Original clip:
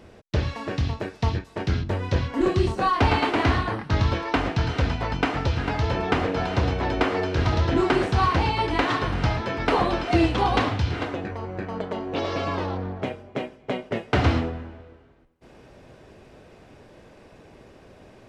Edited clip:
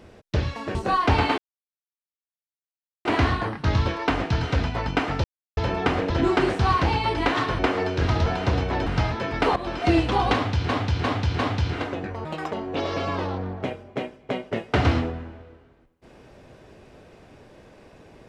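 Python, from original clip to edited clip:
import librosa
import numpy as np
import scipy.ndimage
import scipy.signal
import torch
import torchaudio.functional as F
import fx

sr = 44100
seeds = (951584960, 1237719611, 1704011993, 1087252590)

y = fx.edit(x, sr, fx.cut(start_s=0.75, length_s=1.93),
    fx.insert_silence(at_s=3.31, length_s=1.67),
    fx.silence(start_s=5.5, length_s=0.33),
    fx.swap(start_s=6.36, length_s=0.6, other_s=7.63, other_length_s=1.49),
    fx.fade_in_from(start_s=9.82, length_s=0.27, floor_db=-14.0),
    fx.repeat(start_s=10.6, length_s=0.35, count=4),
    fx.speed_span(start_s=11.46, length_s=0.45, speed=1.69), tone=tone)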